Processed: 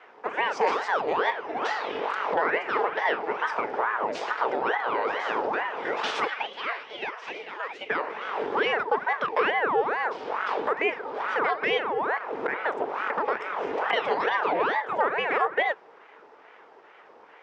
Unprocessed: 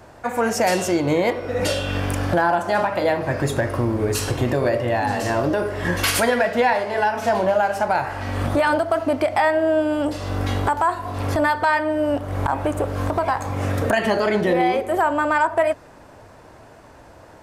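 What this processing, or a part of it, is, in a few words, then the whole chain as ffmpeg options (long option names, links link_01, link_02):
voice changer toy: -filter_complex "[0:a]asettb=1/sr,asplit=3[link_01][link_02][link_03];[link_01]atrim=end=6.274[link_04];[link_02]atrim=start=6.27:end=7.9,asetpts=PTS-STARTPTS,afade=type=in:duration=0.004:curve=qsin,afade=type=out:start_time=1.626:duration=0.004:curve=qsin,highpass=frequency=1100:width=0.5412,highpass=frequency=1100:width=1.3066[link_05];[link_03]atrim=start=7.896[link_06];[link_04][link_05]acrossfade=duration=0.004:curve1=hsin:curve2=qsin[link_07];[link_07][link_06]acrossfade=duration=0.004:curve1=qsin:curve2=hsin,aeval=exprs='val(0)*sin(2*PI*790*n/s+790*0.8/2.3*sin(2*PI*2.3*n/s))':channel_layout=same,highpass=420,equalizer=frequency=440:width_type=q:width=4:gain=9,equalizer=frequency=900:width_type=q:width=4:gain=4,equalizer=frequency=4200:width_type=q:width=4:gain=-6,lowpass=frequency=4600:width=0.5412,lowpass=frequency=4600:width=1.3066,volume=-4dB"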